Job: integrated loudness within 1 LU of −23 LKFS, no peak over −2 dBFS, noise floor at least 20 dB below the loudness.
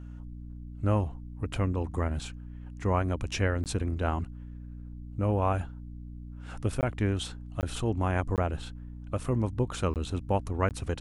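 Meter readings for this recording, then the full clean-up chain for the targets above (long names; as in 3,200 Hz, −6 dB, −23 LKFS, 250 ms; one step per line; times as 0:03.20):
number of dropouts 6; longest dropout 18 ms; mains hum 60 Hz; hum harmonics up to 300 Hz; level of the hum −39 dBFS; integrated loudness −31.0 LKFS; sample peak −13.5 dBFS; target loudness −23.0 LKFS
→ repair the gap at 0:03.64/0:06.81/0:07.61/0:08.36/0:09.94/0:10.69, 18 ms
hum removal 60 Hz, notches 5
level +8 dB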